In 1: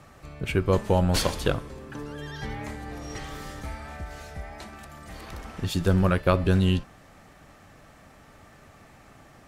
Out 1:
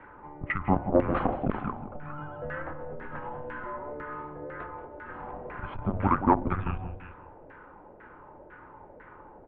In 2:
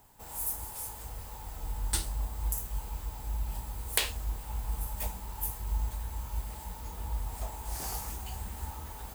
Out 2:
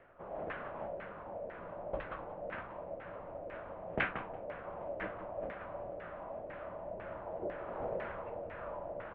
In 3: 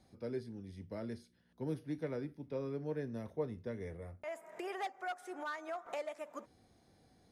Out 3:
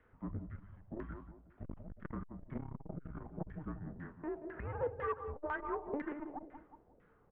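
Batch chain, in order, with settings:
CVSD coder 64 kbps; feedback delay 180 ms, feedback 33%, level -8.5 dB; mistuned SSB -290 Hz 260–3300 Hz; LFO low-pass saw down 2 Hz 560–1800 Hz; transformer saturation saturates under 340 Hz; trim +1.5 dB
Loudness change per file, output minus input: -4.5 LU, -6.0 LU, -1.0 LU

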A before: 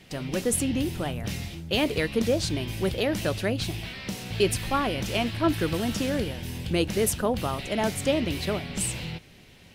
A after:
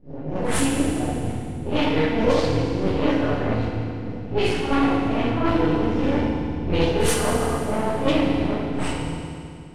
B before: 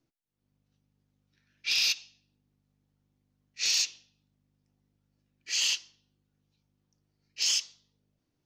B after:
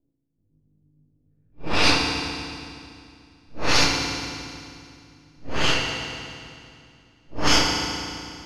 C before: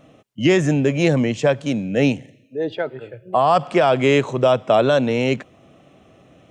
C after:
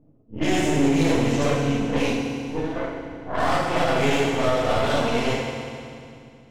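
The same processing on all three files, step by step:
phase randomisation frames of 200 ms; treble shelf 5.8 kHz +10.5 dB; half-wave rectifier; level-controlled noise filter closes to 320 Hz, open at -16.5 dBFS; in parallel at -9.5 dB: one-sided clip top -19 dBFS; on the sum: FDN reverb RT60 2.4 s, low-frequency decay 1.3×, high-frequency decay 0.95×, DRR 0 dB; loudness maximiser +4.5 dB; normalise loudness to -23 LUFS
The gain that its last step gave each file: -1.0 dB, +6.0 dB, -8.5 dB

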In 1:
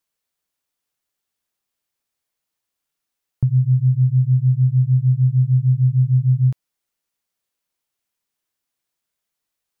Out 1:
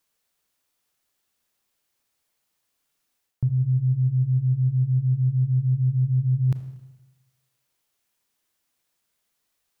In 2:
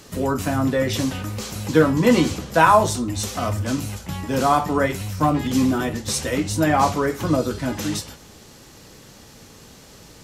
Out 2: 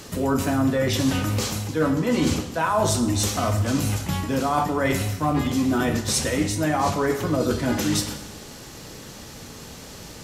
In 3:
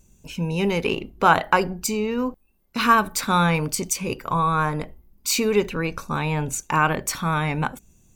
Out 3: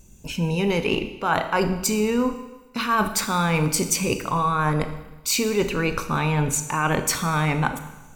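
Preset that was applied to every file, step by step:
reverse; compression 10:1, threshold -24 dBFS; reverse; Schroeder reverb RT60 1.1 s, combs from 26 ms, DRR 9 dB; normalise loudness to -23 LUFS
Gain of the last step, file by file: +5.0 dB, +5.0 dB, +5.5 dB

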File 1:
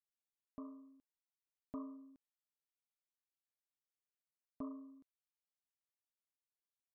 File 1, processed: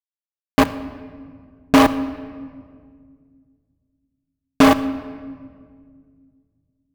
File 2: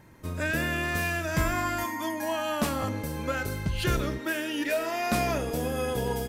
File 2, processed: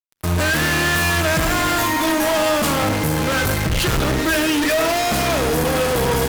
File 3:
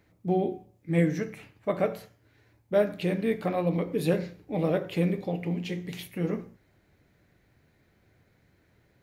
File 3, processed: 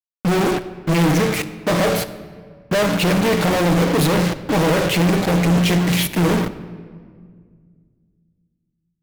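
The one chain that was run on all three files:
in parallel at +1.5 dB: level held to a coarse grid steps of 16 dB; on the sum: Chebyshev shaper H 2 -14 dB, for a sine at -9 dBFS; short-mantissa float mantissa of 4-bit; fuzz box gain 47 dB, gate -41 dBFS; simulated room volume 3100 m³, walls mixed, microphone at 0.59 m; normalise loudness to -18 LUFS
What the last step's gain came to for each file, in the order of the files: +8.5 dB, -4.5 dB, -2.5 dB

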